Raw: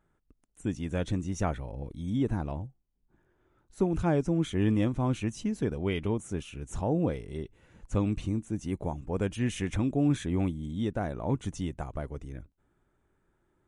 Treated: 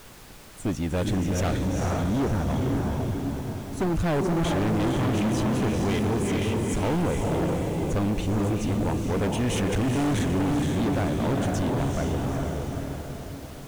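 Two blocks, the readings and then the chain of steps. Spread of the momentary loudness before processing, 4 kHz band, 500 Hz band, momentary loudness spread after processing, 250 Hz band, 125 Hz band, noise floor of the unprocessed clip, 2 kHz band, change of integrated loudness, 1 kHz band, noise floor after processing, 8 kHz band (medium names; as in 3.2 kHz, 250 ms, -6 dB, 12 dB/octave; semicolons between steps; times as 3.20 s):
12 LU, +9.0 dB, +6.0 dB, 7 LU, +5.5 dB, +6.0 dB, -74 dBFS, +8.5 dB, +5.0 dB, +8.5 dB, -40 dBFS, +9.5 dB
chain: echo that smears into a reverb 456 ms, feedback 52%, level -3 dB; hard clipper -30.5 dBFS, distortion -6 dB; added noise pink -55 dBFS; trim +8.5 dB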